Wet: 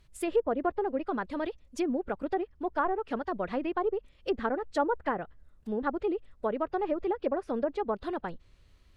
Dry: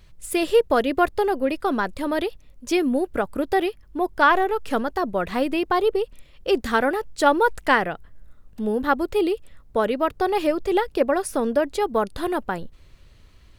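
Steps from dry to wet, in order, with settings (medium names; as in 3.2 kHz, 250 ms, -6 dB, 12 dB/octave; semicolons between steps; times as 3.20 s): time stretch by phase-locked vocoder 0.66×; low-pass that closes with the level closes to 1.1 kHz, closed at -16.5 dBFS; trim -8 dB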